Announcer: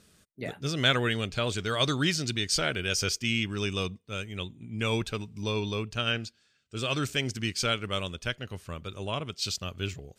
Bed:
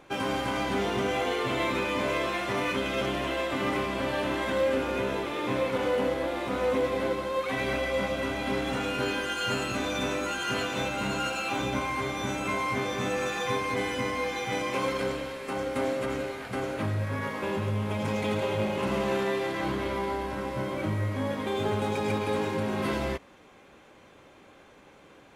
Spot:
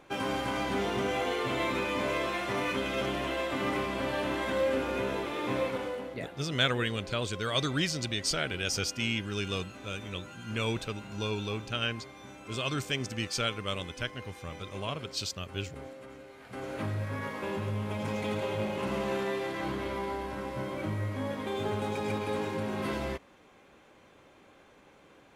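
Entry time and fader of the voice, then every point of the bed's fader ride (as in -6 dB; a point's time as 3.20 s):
5.75 s, -3.0 dB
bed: 5.65 s -2.5 dB
6.21 s -17 dB
16.25 s -17 dB
16.76 s -4 dB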